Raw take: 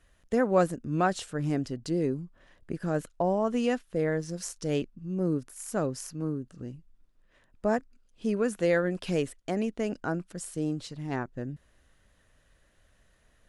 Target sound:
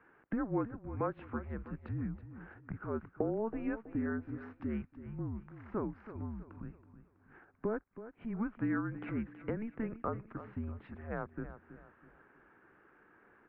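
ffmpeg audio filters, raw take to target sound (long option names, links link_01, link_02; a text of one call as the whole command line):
ffmpeg -i in.wav -af "acompressor=threshold=-40dB:ratio=4,aecho=1:1:325|650|975|1300:0.224|0.0851|0.0323|0.0123,highpass=frequency=360:width_type=q:width=0.5412,highpass=frequency=360:width_type=q:width=1.307,lowpass=frequency=2200:width_type=q:width=0.5176,lowpass=frequency=2200:width_type=q:width=0.7071,lowpass=frequency=2200:width_type=q:width=1.932,afreqshift=-220,volume=7.5dB" out.wav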